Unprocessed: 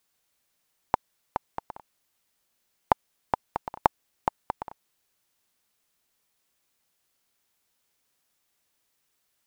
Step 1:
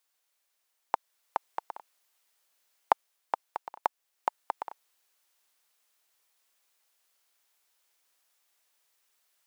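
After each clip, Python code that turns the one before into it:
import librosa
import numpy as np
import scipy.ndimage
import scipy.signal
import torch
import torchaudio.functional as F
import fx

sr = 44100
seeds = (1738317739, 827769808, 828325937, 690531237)

y = scipy.signal.sosfilt(scipy.signal.butter(2, 530.0, 'highpass', fs=sr, output='sos'), x)
y = fx.rider(y, sr, range_db=5, speed_s=0.5)
y = F.gain(torch.from_numpy(y), -3.5).numpy()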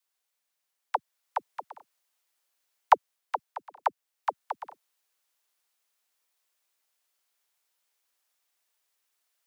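y = fx.dispersion(x, sr, late='lows', ms=60.0, hz=370.0)
y = fx.upward_expand(y, sr, threshold_db=-39.0, expansion=1.5)
y = F.gain(torch.from_numpy(y), 5.5).numpy()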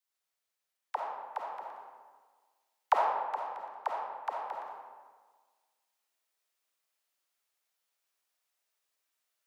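y = fx.rev_freeverb(x, sr, rt60_s=1.5, hf_ratio=0.6, predelay_ms=10, drr_db=-2.0)
y = F.gain(torch.from_numpy(y), -7.5).numpy()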